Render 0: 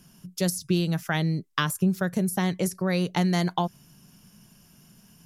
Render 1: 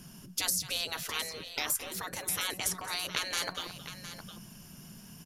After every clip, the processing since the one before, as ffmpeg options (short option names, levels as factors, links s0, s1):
-af "afftfilt=real='re*lt(hypot(re,im),0.0631)':imag='im*lt(hypot(re,im),0.0631)':win_size=1024:overlap=0.75,aecho=1:1:218|711:0.188|0.251,volume=1.68"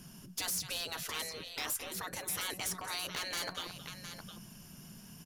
-af "volume=29.9,asoftclip=hard,volume=0.0335,volume=0.794"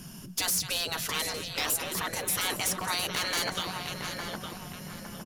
-filter_complex "[0:a]asplit=2[s0][s1];[s1]adelay=860,lowpass=f=1500:p=1,volume=0.708,asplit=2[s2][s3];[s3]adelay=860,lowpass=f=1500:p=1,volume=0.4,asplit=2[s4][s5];[s5]adelay=860,lowpass=f=1500:p=1,volume=0.4,asplit=2[s6][s7];[s7]adelay=860,lowpass=f=1500:p=1,volume=0.4,asplit=2[s8][s9];[s9]adelay=860,lowpass=f=1500:p=1,volume=0.4[s10];[s0][s2][s4][s6][s8][s10]amix=inputs=6:normalize=0,volume=2.37"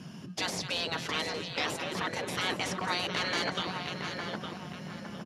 -filter_complex "[0:a]asplit=2[s0][s1];[s1]acrusher=samples=31:mix=1:aa=0.000001,volume=0.282[s2];[s0][s2]amix=inputs=2:normalize=0,highpass=120,lowpass=4200"